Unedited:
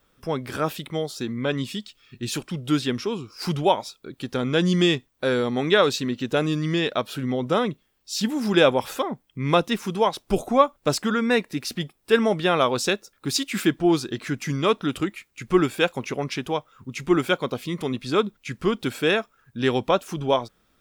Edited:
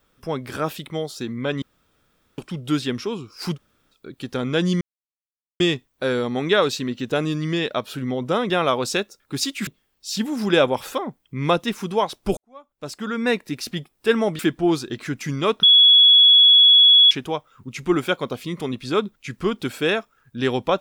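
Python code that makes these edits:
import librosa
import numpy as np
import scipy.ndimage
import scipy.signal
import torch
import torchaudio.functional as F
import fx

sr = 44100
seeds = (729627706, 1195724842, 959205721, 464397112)

y = fx.edit(x, sr, fx.room_tone_fill(start_s=1.62, length_s=0.76),
    fx.room_tone_fill(start_s=3.55, length_s=0.39, crossfade_s=0.06),
    fx.insert_silence(at_s=4.81, length_s=0.79),
    fx.fade_in_span(start_s=10.41, length_s=0.92, curve='qua'),
    fx.move(start_s=12.43, length_s=1.17, to_s=7.71),
    fx.bleep(start_s=14.84, length_s=1.48, hz=3370.0, db=-8.5), tone=tone)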